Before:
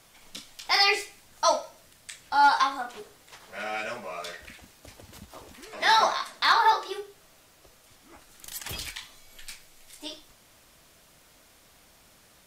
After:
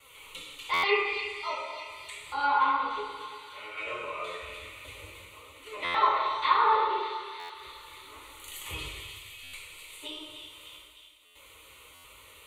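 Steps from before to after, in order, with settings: HPF 82 Hz 6 dB/oct; RIAA curve playback; fixed phaser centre 1100 Hz, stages 8; chopper 0.53 Hz, depth 65%, duty 70%; tilt +2.5 dB/oct; gate with hold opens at -59 dBFS; two-slope reverb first 0.95 s, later 3 s, DRR -5.5 dB; flange 0.36 Hz, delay 3.4 ms, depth 9.2 ms, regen +62%; on a send: split-band echo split 1800 Hz, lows 0.116 s, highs 0.3 s, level -10 dB; on the sum: treble ducked by the level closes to 2700 Hz, closed at -21.5 dBFS; stuck buffer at 0.73/5.84/7.39/9.43/11.25/11.94, samples 512; mismatched tape noise reduction encoder only

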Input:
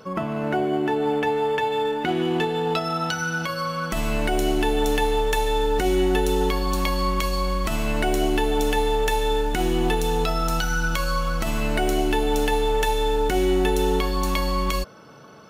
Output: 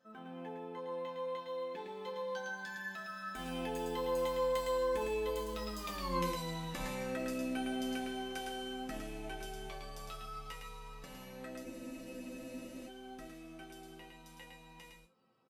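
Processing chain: Doppler pass-by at 6.04, 50 m/s, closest 13 m; HPF 53 Hz 6 dB/oct; reverse; compressor 12:1, threshold -37 dBFS, peak gain reduction 17 dB; reverse; resonator bank F3 major, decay 0.22 s; echo 0.109 s -4.5 dB; spectral freeze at 11.65, 1.22 s; gain +16.5 dB

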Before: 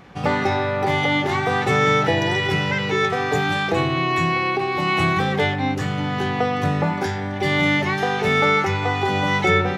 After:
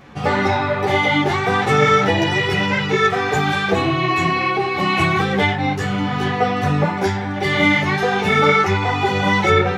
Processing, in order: ensemble effect; gain +6 dB

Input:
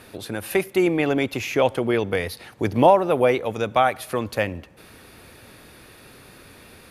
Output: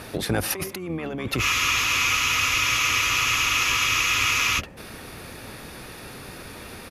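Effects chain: negative-ratio compressor -29 dBFS, ratio -1; harmoniser -12 st -6 dB; spectral freeze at 1.45, 3.13 s

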